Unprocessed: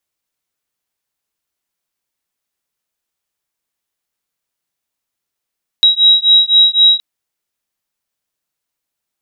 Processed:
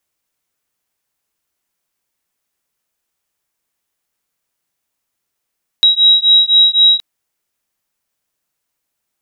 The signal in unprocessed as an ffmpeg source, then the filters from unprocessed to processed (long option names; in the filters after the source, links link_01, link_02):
-f lavfi -i "aevalsrc='0.335*(sin(2*PI*3840*t)+sin(2*PI*3843.9*t))':duration=1.17:sample_rate=44100"
-filter_complex "[0:a]equalizer=frequency=3900:width_type=o:width=0.77:gain=-2.5,asplit=2[link_01][link_02];[link_02]alimiter=limit=-15dB:level=0:latency=1,volume=-3dB[link_03];[link_01][link_03]amix=inputs=2:normalize=0"